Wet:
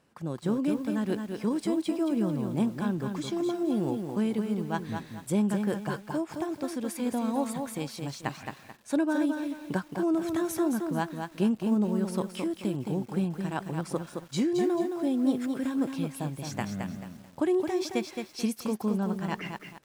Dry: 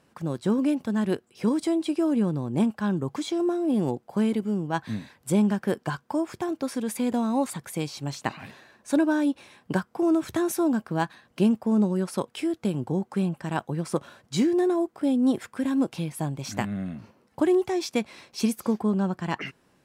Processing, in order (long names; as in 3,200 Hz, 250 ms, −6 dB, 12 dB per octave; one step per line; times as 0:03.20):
feedback echo at a low word length 218 ms, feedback 35%, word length 8 bits, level −5.5 dB
level −4.5 dB